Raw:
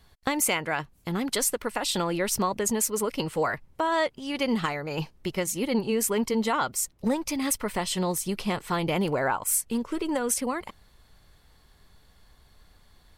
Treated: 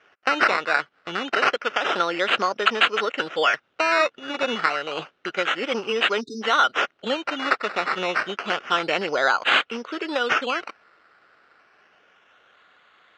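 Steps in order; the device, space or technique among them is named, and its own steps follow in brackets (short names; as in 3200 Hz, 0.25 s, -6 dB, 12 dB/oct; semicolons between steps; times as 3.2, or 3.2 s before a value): circuit-bent sampling toy (decimation with a swept rate 11×, swing 60% 0.29 Hz; speaker cabinet 490–4900 Hz, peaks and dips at 940 Hz -7 dB, 1400 Hz +9 dB, 2900 Hz +6 dB, 4600 Hz -5 dB); spectral delete 6.2–6.41, 440–3600 Hz; gain +6 dB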